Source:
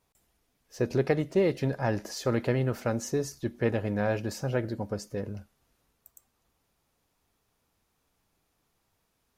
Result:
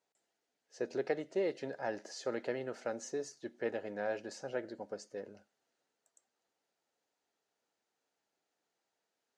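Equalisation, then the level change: cabinet simulation 400–7400 Hz, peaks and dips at 1.1 kHz -10 dB, 2.4 kHz -5 dB, 3.5 kHz -4 dB, 5.4 kHz -4 dB; -5.5 dB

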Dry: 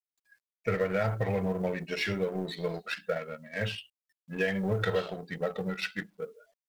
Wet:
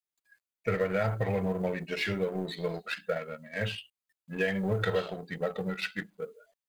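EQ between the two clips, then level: band-stop 5.5 kHz, Q 9.2; 0.0 dB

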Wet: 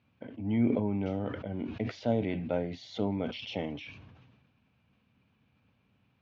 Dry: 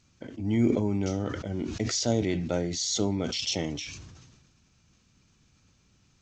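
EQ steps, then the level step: cabinet simulation 120–2700 Hz, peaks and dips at 160 Hz -6 dB, 350 Hz -9 dB, 1.3 kHz -6 dB; peaking EQ 1.9 kHz -5.5 dB 0.38 oct; 0.0 dB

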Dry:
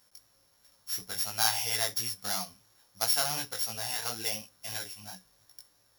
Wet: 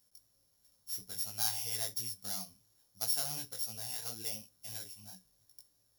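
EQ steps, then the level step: peaking EQ 1.4 kHz -11.5 dB 3 oct; -4.0 dB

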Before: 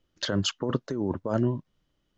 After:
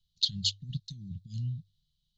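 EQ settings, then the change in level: Chebyshev band-stop 170–4100 Hz, order 4; high-order bell 2.5 kHz +16 dB; hum notches 50/100 Hz; -2.5 dB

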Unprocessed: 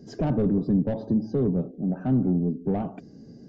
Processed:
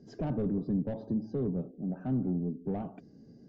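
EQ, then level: distance through air 51 m; -8.0 dB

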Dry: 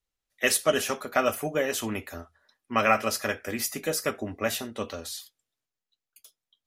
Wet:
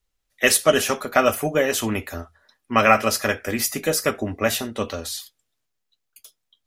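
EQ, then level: bass shelf 67 Hz +7.5 dB; +6.5 dB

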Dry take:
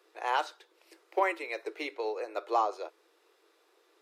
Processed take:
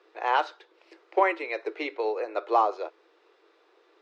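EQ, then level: distance through air 170 m; +6.0 dB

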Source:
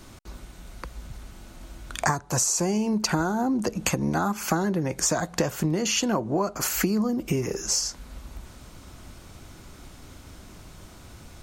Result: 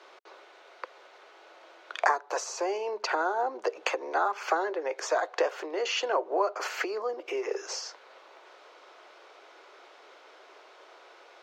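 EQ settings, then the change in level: steep high-pass 400 Hz 48 dB/octave; distance through air 230 m; +2.0 dB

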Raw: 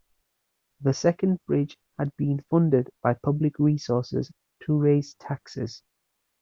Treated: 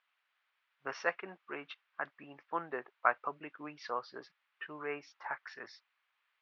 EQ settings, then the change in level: Butterworth band-pass 1.9 kHz, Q 0.89; distance through air 110 m; +4.5 dB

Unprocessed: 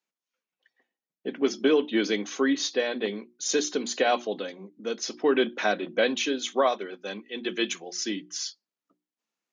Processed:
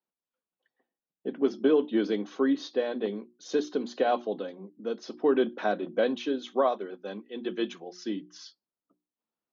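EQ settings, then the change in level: distance through air 270 m; peaking EQ 2.2 kHz -10.5 dB 0.93 oct; 0.0 dB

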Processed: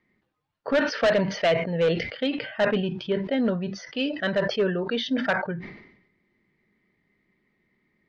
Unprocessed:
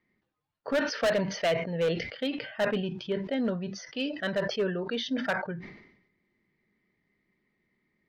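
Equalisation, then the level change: low-pass 4.8 kHz 12 dB/octave; +5.0 dB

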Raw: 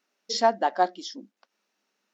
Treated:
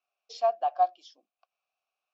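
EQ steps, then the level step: vowel filter a; high-pass 470 Hz 12 dB/octave; treble shelf 2.9 kHz +11.5 dB; 0.0 dB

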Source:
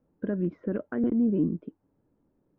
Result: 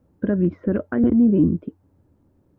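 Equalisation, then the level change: peaking EQ 84 Hz +14.5 dB 0.62 oct; band-stop 450 Hz, Q 15; +8.0 dB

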